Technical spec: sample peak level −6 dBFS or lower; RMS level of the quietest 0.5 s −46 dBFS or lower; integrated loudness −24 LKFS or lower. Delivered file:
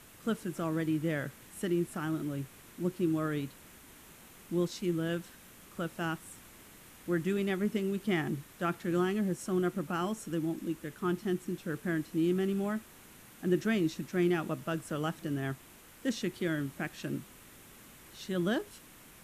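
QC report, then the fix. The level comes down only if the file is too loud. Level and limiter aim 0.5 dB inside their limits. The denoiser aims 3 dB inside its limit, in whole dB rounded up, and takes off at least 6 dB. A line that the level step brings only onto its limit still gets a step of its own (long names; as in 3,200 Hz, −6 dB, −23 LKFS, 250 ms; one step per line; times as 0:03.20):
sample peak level −17.5 dBFS: in spec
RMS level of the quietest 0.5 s −55 dBFS: in spec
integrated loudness −34.0 LKFS: in spec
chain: no processing needed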